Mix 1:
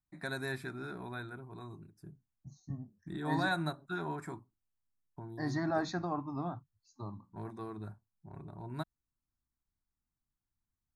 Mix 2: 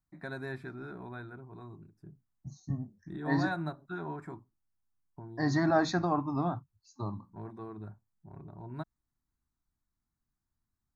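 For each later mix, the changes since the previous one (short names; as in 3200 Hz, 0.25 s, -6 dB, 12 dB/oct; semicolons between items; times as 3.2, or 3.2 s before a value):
first voice: add LPF 1500 Hz 6 dB/oct; second voice +6.5 dB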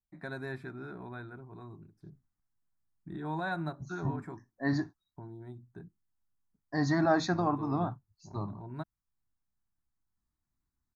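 second voice: entry +1.35 s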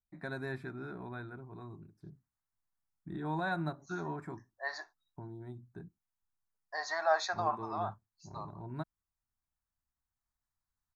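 second voice: add inverse Chebyshev high-pass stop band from 290 Hz, stop band 40 dB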